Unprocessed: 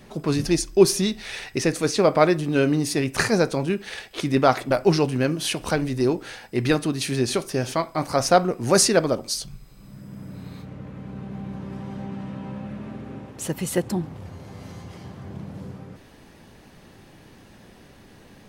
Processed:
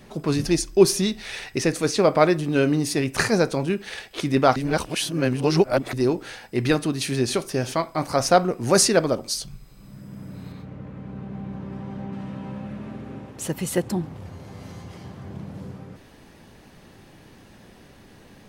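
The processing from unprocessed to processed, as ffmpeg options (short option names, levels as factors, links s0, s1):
-filter_complex "[0:a]asettb=1/sr,asplit=3[s0][s1][s2];[s0]atrim=end=10.524[s3];[s1]atrim=start=10.52:end=12.13,asetpts=PTS-STARTPTS,afade=t=in:d=0.004:c=qsin,afade=t=out:st=1.606:d=0.004:c=qsin,highshelf=f=4100:g=-9[s4];[s2]atrim=start=12.126[s5];[s3][s4]acrossfade=d=0.004:c1=hsin:c2=qsin[s6];[s6][s5]acrossfade=d=0.004:c1=qsin:c2=hsin,asplit=3[s7][s8][s9];[s7]atrim=end=4.562[s10];[s8]atrim=start=4.558:end=5.932,asetpts=PTS-STARTPTS,areverse[s11];[s9]atrim=start=5.928[s12];[s10][s11]acrossfade=d=0.004:c1=hsin:c2=hsin[s13];[s13][s12]acrossfade=d=0.004:c1=hsin:c2=hsin"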